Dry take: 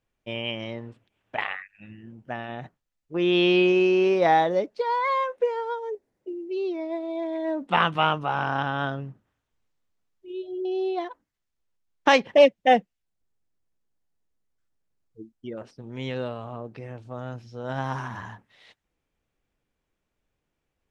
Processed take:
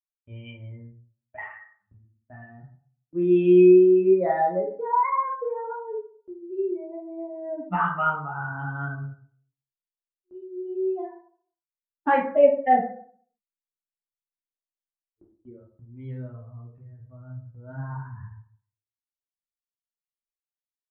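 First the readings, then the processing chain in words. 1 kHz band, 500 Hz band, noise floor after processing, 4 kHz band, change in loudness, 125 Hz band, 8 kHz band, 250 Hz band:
-0.5 dB, +1.5 dB, under -85 dBFS, under -20 dB, +2.0 dB, +0.5 dB, no reading, +3.0 dB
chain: expander on every frequency bin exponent 2; gate with hold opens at -49 dBFS; low-pass 1.8 kHz 24 dB/octave; compression 1.5:1, threshold -30 dBFS, peak gain reduction 6.5 dB; plate-style reverb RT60 0.53 s, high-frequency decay 0.5×, DRR -3 dB; trim +1 dB

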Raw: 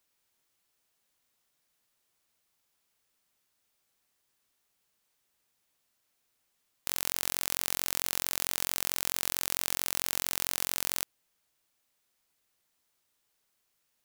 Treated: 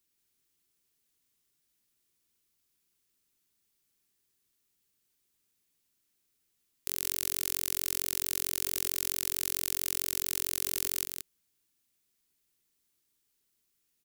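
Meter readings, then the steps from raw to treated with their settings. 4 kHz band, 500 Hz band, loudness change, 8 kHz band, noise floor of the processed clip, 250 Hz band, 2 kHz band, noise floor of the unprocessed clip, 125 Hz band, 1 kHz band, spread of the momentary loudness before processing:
-2.5 dB, -3.0 dB, 0.0 dB, 0.0 dB, -77 dBFS, +1.0 dB, -5.0 dB, -77 dBFS, -1.0 dB, -8.5 dB, 2 LU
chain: FFT filter 390 Hz 0 dB, 580 Hz -13 dB, 2.4 kHz -5 dB, 12 kHz 0 dB; delay 177 ms -5.5 dB

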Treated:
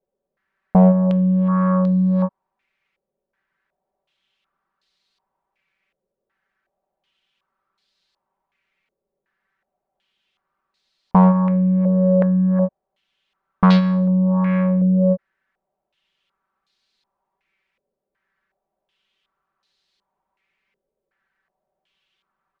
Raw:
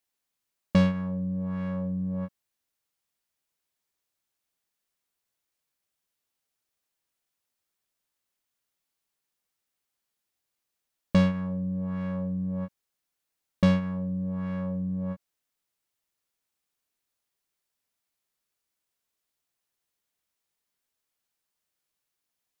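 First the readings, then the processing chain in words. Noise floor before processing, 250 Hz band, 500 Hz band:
-84 dBFS, +12.0 dB, +13.5 dB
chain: overload inside the chain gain 22 dB; comb 5.2 ms, depth 87%; step-sequenced low-pass 2.7 Hz 510–4200 Hz; trim +8.5 dB

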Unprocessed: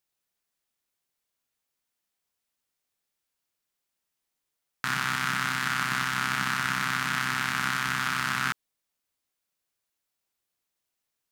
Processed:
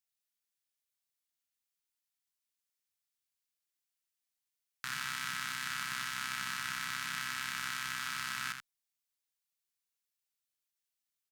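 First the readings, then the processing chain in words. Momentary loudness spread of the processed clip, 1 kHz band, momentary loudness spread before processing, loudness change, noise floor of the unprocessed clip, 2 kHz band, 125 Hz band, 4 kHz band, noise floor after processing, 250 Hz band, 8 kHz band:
2 LU, -12.0 dB, 2 LU, -9.5 dB, -84 dBFS, -10.0 dB, -17.0 dB, -6.5 dB, under -85 dBFS, -17.0 dB, -5.5 dB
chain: amplifier tone stack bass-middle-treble 5-5-5; on a send: delay 80 ms -7.5 dB

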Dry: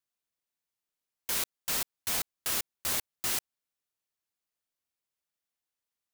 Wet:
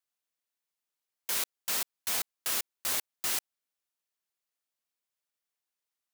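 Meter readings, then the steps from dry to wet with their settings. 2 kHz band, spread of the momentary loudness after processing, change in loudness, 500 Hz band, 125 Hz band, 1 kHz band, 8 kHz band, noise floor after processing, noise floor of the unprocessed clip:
0.0 dB, 1 LU, 0.0 dB, -1.5 dB, -8.0 dB, -0.5 dB, 0.0 dB, under -85 dBFS, under -85 dBFS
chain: bass shelf 210 Hz -11 dB

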